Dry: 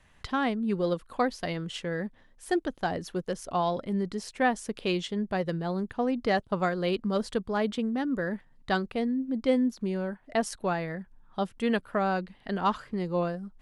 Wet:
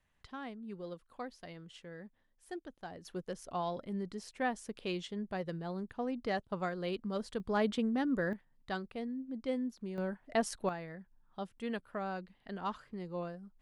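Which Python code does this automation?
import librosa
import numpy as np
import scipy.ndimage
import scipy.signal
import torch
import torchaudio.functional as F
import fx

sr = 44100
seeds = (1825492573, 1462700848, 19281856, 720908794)

y = fx.gain(x, sr, db=fx.steps((0.0, -16.5), (3.05, -9.0), (7.4, -3.0), (8.33, -11.0), (9.98, -4.0), (10.69, -11.5)))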